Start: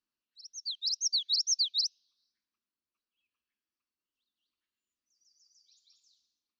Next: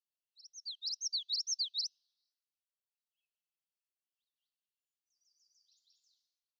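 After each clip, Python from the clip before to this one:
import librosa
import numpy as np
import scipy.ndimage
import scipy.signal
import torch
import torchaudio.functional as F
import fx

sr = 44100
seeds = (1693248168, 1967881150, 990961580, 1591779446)

y = scipy.signal.sosfilt(scipy.signal.cheby1(8, 1.0, 2600.0, 'highpass', fs=sr, output='sos'), x)
y = F.gain(torch.from_numpy(y), -6.5).numpy()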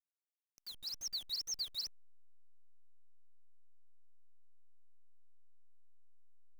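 y = fx.delta_hold(x, sr, step_db=-42.5)
y = F.gain(torch.from_numpy(y), -4.0).numpy()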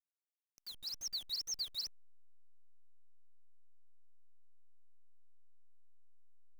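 y = x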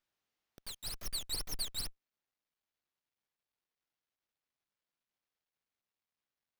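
y = fx.running_max(x, sr, window=5)
y = F.gain(torch.from_numpy(y), 6.5).numpy()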